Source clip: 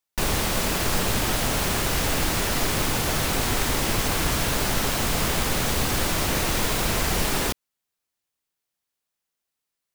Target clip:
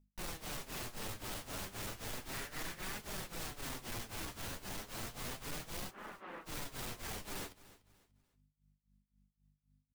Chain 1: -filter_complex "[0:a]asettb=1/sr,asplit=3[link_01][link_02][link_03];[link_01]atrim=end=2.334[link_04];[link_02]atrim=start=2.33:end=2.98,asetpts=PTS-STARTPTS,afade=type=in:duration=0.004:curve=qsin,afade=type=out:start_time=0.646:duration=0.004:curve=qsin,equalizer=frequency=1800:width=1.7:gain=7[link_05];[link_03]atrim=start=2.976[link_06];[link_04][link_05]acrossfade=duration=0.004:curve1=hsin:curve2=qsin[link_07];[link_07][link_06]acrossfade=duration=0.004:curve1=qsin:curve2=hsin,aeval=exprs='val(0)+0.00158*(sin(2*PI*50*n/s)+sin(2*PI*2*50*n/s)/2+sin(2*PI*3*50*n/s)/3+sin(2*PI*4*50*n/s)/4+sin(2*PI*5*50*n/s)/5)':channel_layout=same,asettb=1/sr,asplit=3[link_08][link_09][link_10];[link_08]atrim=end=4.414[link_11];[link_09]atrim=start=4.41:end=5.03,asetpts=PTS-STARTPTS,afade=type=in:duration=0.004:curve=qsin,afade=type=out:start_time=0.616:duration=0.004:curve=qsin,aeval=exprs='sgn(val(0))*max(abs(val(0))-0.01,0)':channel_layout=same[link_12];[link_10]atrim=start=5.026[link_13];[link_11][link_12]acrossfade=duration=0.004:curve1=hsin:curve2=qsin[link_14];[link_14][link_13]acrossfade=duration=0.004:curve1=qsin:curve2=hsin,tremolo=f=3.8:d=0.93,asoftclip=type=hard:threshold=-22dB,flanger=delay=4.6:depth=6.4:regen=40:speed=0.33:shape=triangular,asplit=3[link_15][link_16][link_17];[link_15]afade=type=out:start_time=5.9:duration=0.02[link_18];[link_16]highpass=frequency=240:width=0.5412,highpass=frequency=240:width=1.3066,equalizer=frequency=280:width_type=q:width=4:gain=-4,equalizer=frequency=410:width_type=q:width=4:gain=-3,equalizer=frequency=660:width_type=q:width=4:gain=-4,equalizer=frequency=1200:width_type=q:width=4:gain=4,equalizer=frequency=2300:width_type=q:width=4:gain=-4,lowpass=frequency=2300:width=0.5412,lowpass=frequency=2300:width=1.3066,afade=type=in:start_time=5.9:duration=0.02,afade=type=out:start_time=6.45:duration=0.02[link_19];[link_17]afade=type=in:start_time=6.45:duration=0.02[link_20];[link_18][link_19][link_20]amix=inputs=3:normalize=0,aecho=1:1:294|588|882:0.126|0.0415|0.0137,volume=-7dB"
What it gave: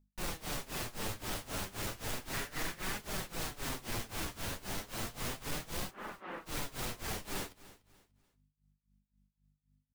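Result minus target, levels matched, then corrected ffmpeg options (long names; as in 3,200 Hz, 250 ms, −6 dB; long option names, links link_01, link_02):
hard clipping: distortion −7 dB
-filter_complex "[0:a]asettb=1/sr,asplit=3[link_01][link_02][link_03];[link_01]atrim=end=2.334[link_04];[link_02]atrim=start=2.33:end=2.98,asetpts=PTS-STARTPTS,afade=type=in:duration=0.004:curve=qsin,afade=type=out:start_time=0.646:duration=0.004:curve=qsin,equalizer=frequency=1800:width=1.7:gain=7[link_05];[link_03]atrim=start=2.976[link_06];[link_04][link_05]acrossfade=duration=0.004:curve1=hsin:curve2=qsin[link_07];[link_07][link_06]acrossfade=duration=0.004:curve1=qsin:curve2=hsin,aeval=exprs='val(0)+0.00158*(sin(2*PI*50*n/s)+sin(2*PI*2*50*n/s)/2+sin(2*PI*3*50*n/s)/3+sin(2*PI*4*50*n/s)/4+sin(2*PI*5*50*n/s)/5)':channel_layout=same,asettb=1/sr,asplit=3[link_08][link_09][link_10];[link_08]atrim=end=4.414[link_11];[link_09]atrim=start=4.41:end=5.03,asetpts=PTS-STARTPTS,afade=type=in:duration=0.004:curve=qsin,afade=type=out:start_time=0.616:duration=0.004:curve=qsin,aeval=exprs='sgn(val(0))*max(abs(val(0))-0.01,0)':channel_layout=same[link_12];[link_10]atrim=start=5.026[link_13];[link_11][link_12]acrossfade=duration=0.004:curve1=hsin:curve2=qsin[link_14];[link_14][link_13]acrossfade=duration=0.004:curve1=qsin:curve2=hsin,tremolo=f=3.8:d=0.93,asoftclip=type=hard:threshold=-29.5dB,flanger=delay=4.6:depth=6.4:regen=40:speed=0.33:shape=triangular,asplit=3[link_15][link_16][link_17];[link_15]afade=type=out:start_time=5.9:duration=0.02[link_18];[link_16]highpass=frequency=240:width=0.5412,highpass=frequency=240:width=1.3066,equalizer=frequency=280:width_type=q:width=4:gain=-4,equalizer=frequency=410:width_type=q:width=4:gain=-3,equalizer=frequency=660:width_type=q:width=4:gain=-4,equalizer=frequency=1200:width_type=q:width=4:gain=4,equalizer=frequency=2300:width_type=q:width=4:gain=-4,lowpass=frequency=2300:width=0.5412,lowpass=frequency=2300:width=1.3066,afade=type=in:start_time=5.9:duration=0.02,afade=type=out:start_time=6.45:duration=0.02[link_19];[link_17]afade=type=in:start_time=6.45:duration=0.02[link_20];[link_18][link_19][link_20]amix=inputs=3:normalize=0,aecho=1:1:294|588|882:0.126|0.0415|0.0137,volume=-7dB"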